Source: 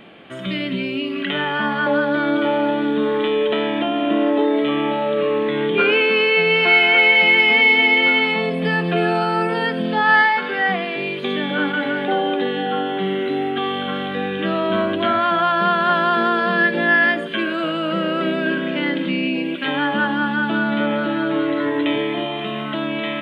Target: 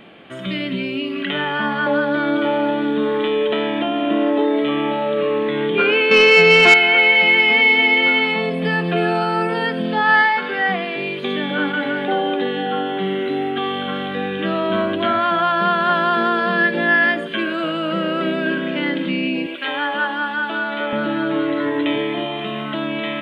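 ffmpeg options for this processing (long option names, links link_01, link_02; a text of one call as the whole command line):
ffmpeg -i in.wav -filter_complex "[0:a]asettb=1/sr,asplit=3[link_01][link_02][link_03];[link_01]atrim=end=6.114[link_04];[link_02]atrim=start=6.11:end=6.74,asetpts=PTS-STARTPTS,afade=type=in:duration=0.004:curve=qsin,afade=type=out:start_time=0.626:duration=0.004:curve=qsin,acontrast=77[link_05];[link_03]atrim=start=6.736[link_06];[link_04][link_05]acrossfade=duration=0.004:curve1=hsin:curve2=qsin[link_07];[link_07][link_06]acrossfade=duration=0.004:curve1=qsin:curve2=hsin,asettb=1/sr,asplit=3[link_08][link_09][link_10];[link_08]atrim=end=19.464[link_11];[link_09]atrim=start=19.46:end=20.93,asetpts=PTS-STARTPTS,afade=type=in:duration=0.004:curve=qsin,afade=type=out:start_time=1.466:duration=0.004:curve=qsin,highpass=440[link_12];[link_10]atrim=start=20.926[link_13];[link_11][link_12]acrossfade=duration=0.004:curve1=hsin:curve2=qsin[link_14];[link_14][link_13]acrossfade=duration=0.004:curve1=qsin:curve2=hsin" out.wav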